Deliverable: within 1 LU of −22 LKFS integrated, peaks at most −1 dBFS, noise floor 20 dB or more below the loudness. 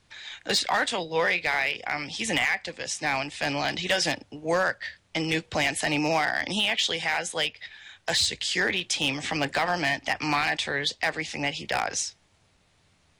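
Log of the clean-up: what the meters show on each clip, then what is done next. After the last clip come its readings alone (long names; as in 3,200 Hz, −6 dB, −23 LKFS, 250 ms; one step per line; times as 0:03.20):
share of clipped samples 0.3%; peaks flattened at −16.0 dBFS; integrated loudness −26.0 LKFS; sample peak −16.0 dBFS; target loudness −22.0 LKFS
→ clipped peaks rebuilt −16 dBFS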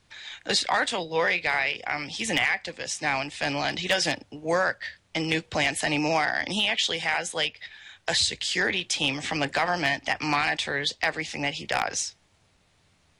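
share of clipped samples 0.0%; integrated loudness −26.0 LKFS; sample peak −7.0 dBFS; target loudness −22.0 LKFS
→ level +4 dB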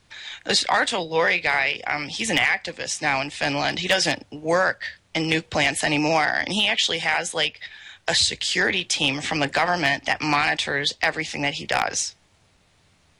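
integrated loudness −22.0 LKFS; sample peak −3.0 dBFS; background noise floor −61 dBFS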